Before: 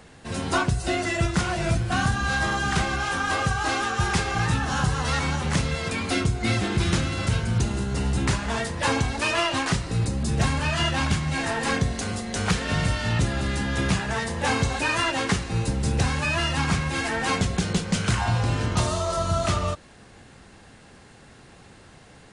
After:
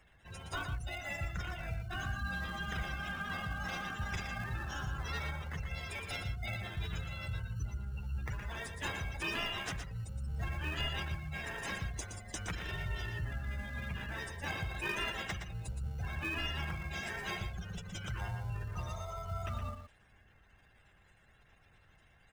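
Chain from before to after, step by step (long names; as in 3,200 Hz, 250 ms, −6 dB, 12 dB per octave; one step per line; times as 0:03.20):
notch filter 4,400 Hz, Q 6.7
gate on every frequency bin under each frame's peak −20 dB strong
guitar amp tone stack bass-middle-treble 10-0-10
in parallel at −5.5 dB: decimation without filtering 31×
on the sum: single-tap delay 118 ms −7.5 dB
level −7.5 dB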